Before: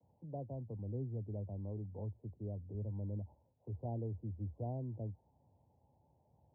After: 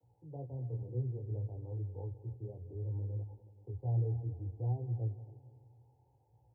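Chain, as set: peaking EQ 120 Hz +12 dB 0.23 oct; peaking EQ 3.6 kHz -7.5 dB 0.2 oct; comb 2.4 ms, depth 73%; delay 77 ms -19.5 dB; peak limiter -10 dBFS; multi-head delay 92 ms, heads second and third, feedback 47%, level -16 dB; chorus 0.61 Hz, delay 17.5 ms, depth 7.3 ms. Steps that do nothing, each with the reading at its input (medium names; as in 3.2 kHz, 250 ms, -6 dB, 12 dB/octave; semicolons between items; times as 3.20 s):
peaking EQ 3.6 kHz: input has nothing above 720 Hz; peak limiter -10 dBFS: peak at its input -23.5 dBFS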